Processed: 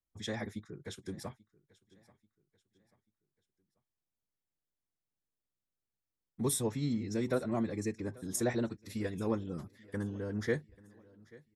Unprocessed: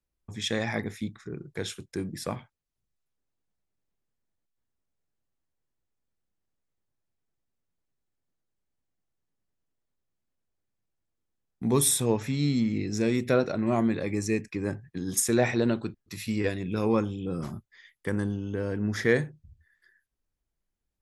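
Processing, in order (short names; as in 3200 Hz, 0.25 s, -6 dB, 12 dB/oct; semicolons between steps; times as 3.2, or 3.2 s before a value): bell 2500 Hz -7 dB 0.29 oct; time stretch by phase-locked vocoder 0.55×; feedback echo 0.837 s, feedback 40%, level -23 dB; gain -7 dB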